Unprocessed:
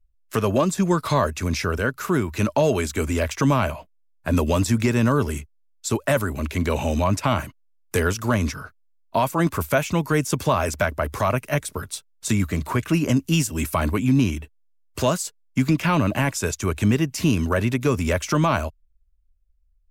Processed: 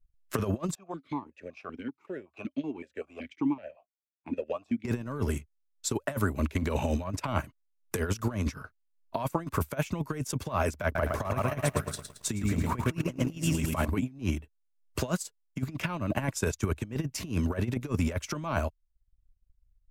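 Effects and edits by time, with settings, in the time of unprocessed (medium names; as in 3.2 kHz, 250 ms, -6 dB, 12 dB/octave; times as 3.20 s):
0.75–4.85 s: stepped vowel filter 5.3 Hz
10.84–13.88 s: bit-crushed delay 111 ms, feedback 55%, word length 8-bit, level -5 dB
whole clip: treble shelf 2.3 kHz -4.5 dB; compressor with a negative ratio -23 dBFS, ratio -0.5; transient shaper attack +4 dB, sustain -10 dB; trim -6 dB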